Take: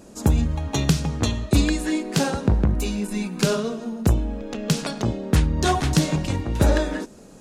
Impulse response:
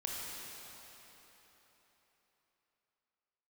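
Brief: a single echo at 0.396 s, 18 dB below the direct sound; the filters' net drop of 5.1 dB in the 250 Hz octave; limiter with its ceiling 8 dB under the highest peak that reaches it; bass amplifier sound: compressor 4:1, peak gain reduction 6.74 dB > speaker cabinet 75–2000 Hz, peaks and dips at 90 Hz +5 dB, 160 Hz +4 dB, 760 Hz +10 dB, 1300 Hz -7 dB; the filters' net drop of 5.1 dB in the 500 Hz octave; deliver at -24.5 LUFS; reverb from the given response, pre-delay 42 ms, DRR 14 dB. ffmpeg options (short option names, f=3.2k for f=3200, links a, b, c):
-filter_complex "[0:a]equalizer=f=250:t=o:g=-9,equalizer=f=500:t=o:g=-6.5,alimiter=limit=-15.5dB:level=0:latency=1,aecho=1:1:396:0.126,asplit=2[a][b];[1:a]atrim=start_sample=2205,adelay=42[c];[b][c]afir=irnorm=-1:irlink=0,volume=-16dB[d];[a][d]amix=inputs=2:normalize=0,acompressor=threshold=-26dB:ratio=4,highpass=f=75:w=0.5412,highpass=f=75:w=1.3066,equalizer=f=90:t=q:w=4:g=5,equalizer=f=160:t=q:w=4:g=4,equalizer=f=760:t=q:w=4:g=10,equalizer=f=1.3k:t=q:w=4:g=-7,lowpass=f=2k:w=0.5412,lowpass=f=2k:w=1.3066,volume=7.5dB"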